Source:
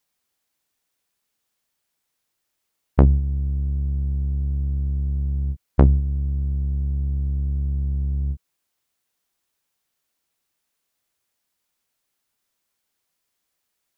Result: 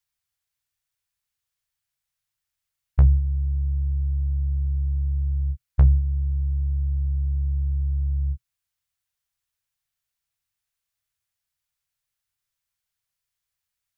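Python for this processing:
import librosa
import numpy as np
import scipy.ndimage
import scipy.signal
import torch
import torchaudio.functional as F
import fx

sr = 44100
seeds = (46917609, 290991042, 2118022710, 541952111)

y = fx.curve_eq(x, sr, hz=(120.0, 280.0, 460.0, 1100.0, 1600.0), db=(0, -26, -16, -10, -7))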